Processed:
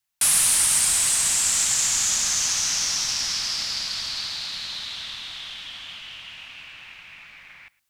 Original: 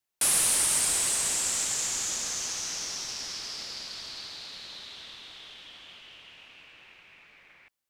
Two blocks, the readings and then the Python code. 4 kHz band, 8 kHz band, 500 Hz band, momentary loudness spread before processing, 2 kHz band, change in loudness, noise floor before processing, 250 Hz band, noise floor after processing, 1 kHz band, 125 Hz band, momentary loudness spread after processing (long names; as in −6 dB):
+8.5 dB, +7.0 dB, −2.0 dB, 22 LU, +7.0 dB, +6.5 dB, −72 dBFS, +1.5 dB, −60 dBFS, +4.5 dB, +6.0 dB, 20 LU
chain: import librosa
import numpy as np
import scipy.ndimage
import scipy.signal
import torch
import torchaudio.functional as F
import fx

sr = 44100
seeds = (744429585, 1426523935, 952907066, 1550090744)

y = fx.peak_eq(x, sr, hz=420.0, db=-13.5, octaves=1.3)
y = fx.rider(y, sr, range_db=3, speed_s=2.0)
y = y + 10.0 ** (-22.5 / 20.0) * np.pad(y, (int(113 * sr / 1000.0), 0))[:len(y)]
y = y * 10.0 ** (8.0 / 20.0)